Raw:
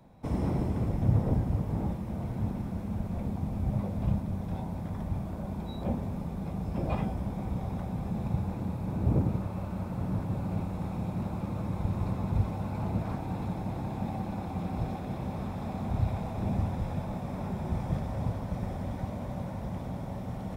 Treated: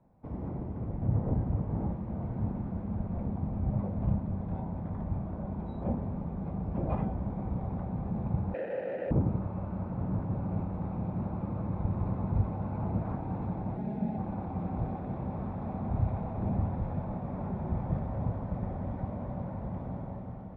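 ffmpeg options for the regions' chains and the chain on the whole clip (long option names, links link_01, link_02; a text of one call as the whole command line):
ffmpeg -i in.wav -filter_complex "[0:a]asettb=1/sr,asplit=3[link_01][link_02][link_03];[link_01]atrim=end=8.544[link_04];[link_02]atrim=start=8.54:end=9.11,asetpts=PTS-STARTPTS,afade=type=in:duration=0.004:curve=qsin,afade=type=out:start_time=0.566:duration=0.004:curve=qsin,asplit=2[link_05][link_06];[link_06]highpass=frequency=720:poles=1,volume=45dB,asoftclip=type=tanh:threshold=-15dB[link_07];[link_05][link_07]amix=inputs=2:normalize=0,lowpass=frequency=4700:poles=1,volume=-6dB,asplit=3[link_08][link_09][link_10];[link_08]bandpass=frequency=530:width_type=q:width=8,volume=0dB[link_11];[link_09]bandpass=frequency=1840:width_type=q:width=8,volume=-6dB[link_12];[link_10]bandpass=frequency=2480:width_type=q:width=8,volume=-9dB[link_13];[link_11][link_12][link_13]amix=inputs=3:normalize=0,bandreject=frequency=3400:width=12[link_14];[link_03]atrim=start=9.106[link_15];[link_04][link_14]acrossfade=duration=0.004:curve1=hsin:curve2=qsin[link_16];[link_16][link_15]acrossfade=duration=0.004:curve1=qsin:curve2=hsin,asettb=1/sr,asplit=3[link_17][link_18][link_19];[link_17]atrim=end=13.764[link_20];[link_18]atrim=start=13.76:end=14.18,asetpts=PTS-STARTPTS,afade=type=in:duration=0.004:curve=qsin,afade=type=out:start_time=0.416:duration=0.004:curve=qsin,highpass=84,equalizer=frequency=1100:width=2.4:gain=-13.5,aecho=1:1:4.8:0.81,atrim=end_sample=18522[link_21];[link_19]atrim=start=14.176[link_22];[link_20][link_21]acrossfade=duration=0.004:curve1=hsin:curve2=qsin[link_23];[link_23][link_22]acrossfade=duration=0.004:curve1=qsin:curve2=hsin,lowpass=1400,dynaudnorm=framelen=740:gausssize=3:maxgain=8dB,volume=-8.5dB" out.wav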